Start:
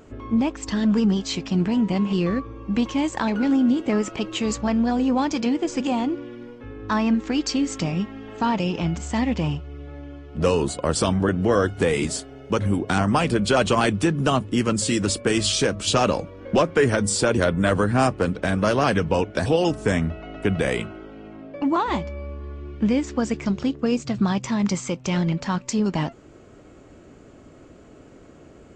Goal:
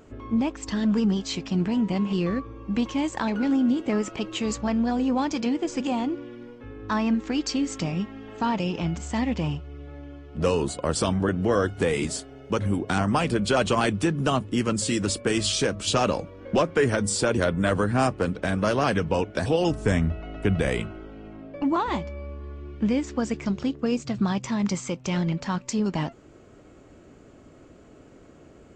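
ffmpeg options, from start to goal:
-filter_complex "[0:a]asettb=1/sr,asplit=3[a][b][c];[a]atrim=end=19.614[d];[b]atrim=start=19.61:end=21.89,asetpts=PTS-STARTPTS,afade=t=in:d=0.004:c=qsin,afade=t=out:st=2.276:d=0.004:c=qsin,lowshelf=f=89:g=11.5[e];[c]atrim=start=21.886[f];[d][e]acrossfade=d=0.004:c1=hsin:c2=qsin[g];[g][f]acrossfade=d=0.004:c1=qsin:c2=hsin,volume=-3dB"

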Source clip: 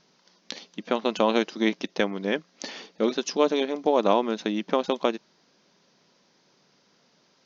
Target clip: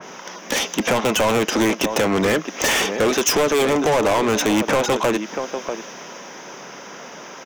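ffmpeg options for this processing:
-filter_complex "[0:a]equalizer=f=4.3k:t=o:w=0.36:g=-14,acrossover=split=120|770[a][b][c];[c]alimiter=limit=-21.5dB:level=0:latency=1:release=14[d];[a][b][d]amix=inputs=3:normalize=0,acompressor=threshold=-30dB:ratio=6,asplit=2[e][f];[f]adelay=641.4,volume=-18dB,highshelf=f=4k:g=-14.4[g];[e][g]amix=inputs=2:normalize=0,asplit=2[h][i];[i]highpass=f=720:p=1,volume=31dB,asoftclip=type=tanh:threshold=-18dB[j];[h][j]amix=inputs=2:normalize=0,lowpass=f=1.7k:p=1,volume=-6dB,aexciter=amount=3.5:drive=4.8:freq=6.1k,adynamicequalizer=threshold=0.00708:dfrequency=2400:dqfactor=0.7:tfrequency=2400:tqfactor=0.7:attack=5:release=100:ratio=0.375:range=2.5:mode=boostabove:tftype=highshelf,volume=8.5dB"

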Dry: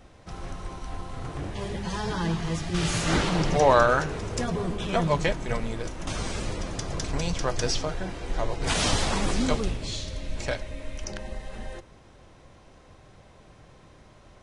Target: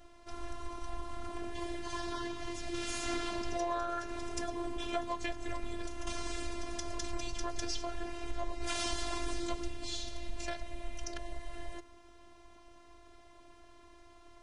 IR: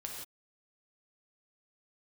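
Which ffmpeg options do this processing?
-af "acompressor=threshold=-29dB:ratio=3,afftfilt=real='hypot(re,im)*cos(PI*b)':imag='0':win_size=512:overlap=0.75,volume=-1dB"

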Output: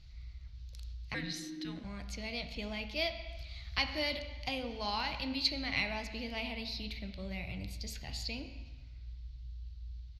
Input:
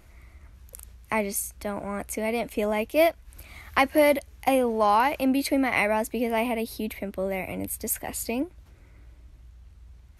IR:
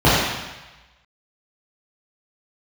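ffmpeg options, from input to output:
-filter_complex "[0:a]firequalizer=gain_entry='entry(110,0);entry(300,-21);entry(600,-21);entry(4300,7);entry(8800,-27)':delay=0.05:min_phase=1,asplit=2[a][b];[1:a]atrim=start_sample=2205,asetrate=42336,aresample=44100,lowshelf=f=170:g=-12[c];[b][c]afir=irnorm=-1:irlink=0,volume=-32.5dB[d];[a][d]amix=inputs=2:normalize=0,asettb=1/sr,asplit=3[e][f][g];[e]atrim=end=1.144[h];[f]atrim=start=1.14:end=1.84,asetpts=PTS-STARTPTS,afade=t=in:d=0.004:c=qsin,afade=t=out:st=0.696:d=0.004:c=qsin,afreqshift=-370[i];[g]atrim=start=1.836[j];[h][i]acrossfade=d=0.004:c1=hsin:c2=qsin[k];[k][j]acrossfade=d=0.004:c1=qsin:c2=hsin"

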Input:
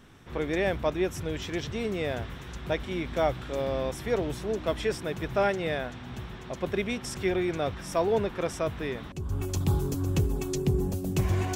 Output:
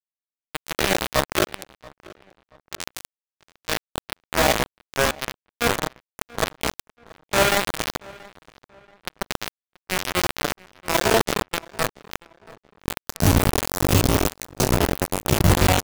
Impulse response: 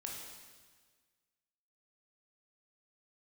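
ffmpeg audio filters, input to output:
-filter_complex "[1:a]atrim=start_sample=2205,afade=t=out:st=0.27:d=0.01,atrim=end_sample=12348[a];[0:a][a]afir=irnorm=-1:irlink=0,acrusher=bits=3:mix=0:aa=0.000001,atempo=0.73,asplit=2[b][c];[c]adelay=681,lowpass=f=3k:p=1,volume=-22dB,asplit=2[d][e];[e]adelay=681,lowpass=f=3k:p=1,volume=0.35[f];[b][d][f]amix=inputs=3:normalize=0,volume=8dB"

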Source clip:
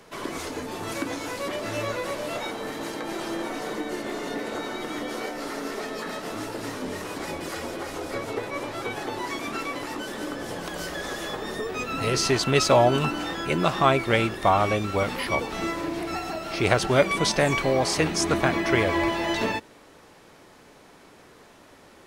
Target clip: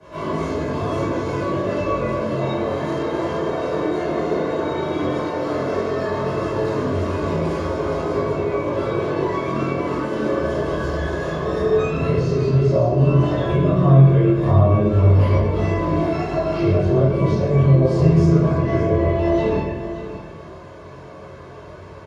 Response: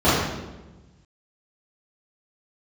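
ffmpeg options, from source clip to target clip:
-filter_complex "[0:a]lowpass=9k,highshelf=f=6.5k:g=6.5,bandreject=f=470:w=12,aecho=1:1:1.9:0.62,acrossover=split=470[a][b];[b]acompressor=threshold=-35dB:ratio=6[c];[a][c]amix=inputs=2:normalize=0,alimiter=limit=-21.5dB:level=0:latency=1:release=224,asplit=2[d][e];[e]adynamicsmooth=sensitivity=2:basefreq=3.4k,volume=-3dB[f];[d][f]amix=inputs=2:normalize=0,flanger=delay=19:depth=6.4:speed=0.13,aecho=1:1:576:0.237[g];[1:a]atrim=start_sample=2205[h];[g][h]afir=irnorm=-1:irlink=0,volume=-15.5dB"

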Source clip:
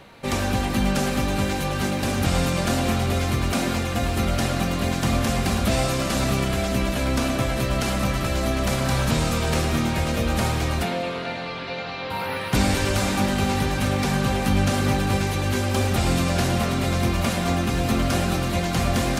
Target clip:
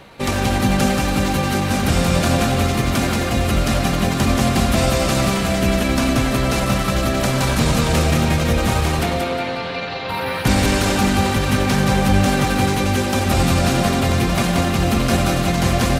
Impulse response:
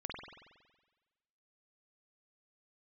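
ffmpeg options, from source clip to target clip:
-af "atempo=1.2,aecho=1:1:180|360|540|720:0.596|0.167|0.0467|0.0131,volume=4dB"

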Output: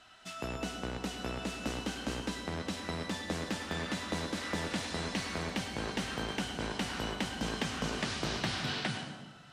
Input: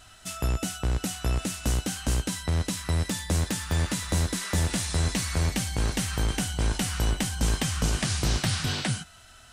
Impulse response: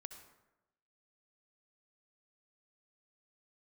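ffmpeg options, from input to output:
-filter_complex "[0:a]acrossover=split=170 5000:gain=0.141 1 0.158[a][b][c];[a][b][c]amix=inputs=3:normalize=0[d];[1:a]atrim=start_sample=2205,asetrate=29547,aresample=44100[e];[d][e]afir=irnorm=-1:irlink=0"

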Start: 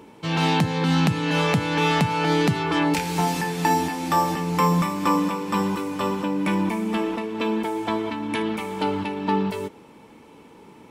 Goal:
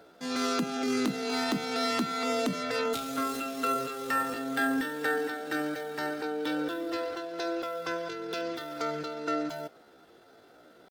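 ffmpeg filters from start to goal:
-af "asetrate=68011,aresample=44100,atempo=0.64842,volume=-8.5dB"

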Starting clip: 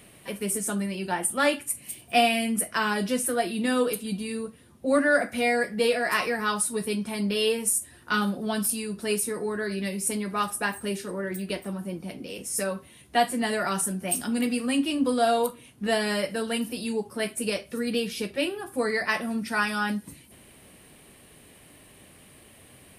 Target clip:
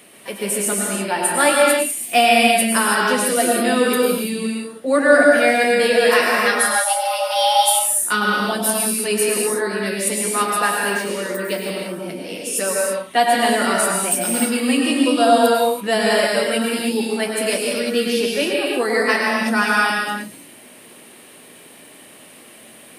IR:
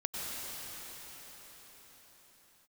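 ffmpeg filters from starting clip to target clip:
-filter_complex "[0:a]highpass=260,asettb=1/sr,asplit=3[a][b][c];[a]atrim=end=6.464[d];[b]atrim=start=6.46:end=7.8,asetpts=PTS-STARTPTS,afade=t=in:d=0.004:c=qsin,afade=t=out:st=1.336:d=0.004:c=qsin,afreqshift=380[e];[c]atrim=start=7.796[f];[d][e]acrossfade=d=0.004:c1=hsin:c2=qsin[g];[g][f]acrossfade=d=0.004:c1=qsin:c2=hsin[h];[1:a]atrim=start_sample=2205,afade=t=out:st=0.39:d=0.01,atrim=end_sample=17640[i];[h][i]afir=irnorm=-1:irlink=0,volume=7.5dB"

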